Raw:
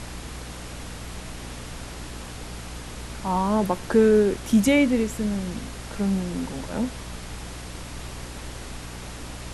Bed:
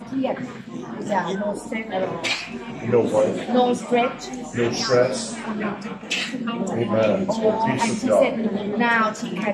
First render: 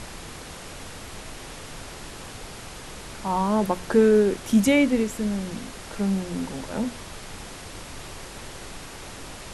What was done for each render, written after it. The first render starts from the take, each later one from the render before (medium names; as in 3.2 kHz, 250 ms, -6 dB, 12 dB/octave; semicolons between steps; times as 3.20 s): hum notches 60/120/180/240/300 Hz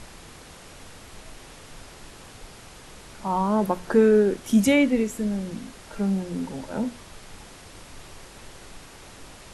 noise print and reduce 6 dB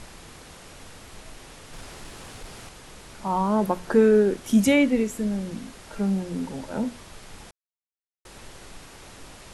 1.73–2.69 s: waveshaping leveller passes 1; 7.51–8.25 s: mute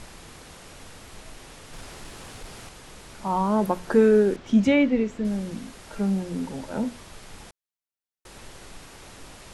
4.36–5.25 s: distance through air 150 m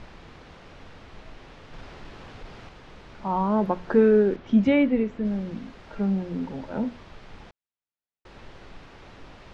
distance through air 220 m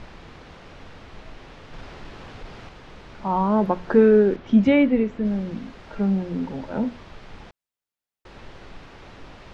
trim +3 dB